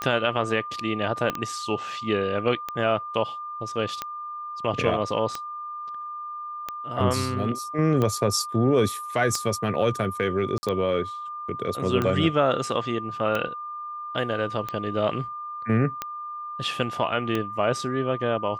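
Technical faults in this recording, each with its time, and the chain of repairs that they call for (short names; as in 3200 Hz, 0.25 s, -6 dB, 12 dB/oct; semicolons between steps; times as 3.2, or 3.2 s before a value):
tick 45 rpm -13 dBFS
tone 1200 Hz -32 dBFS
1.3 pop -12 dBFS
10.58–10.63 gap 50 ms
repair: de-click; notch 1200 Hz, Q 30; interpolate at 10.58, 50 ms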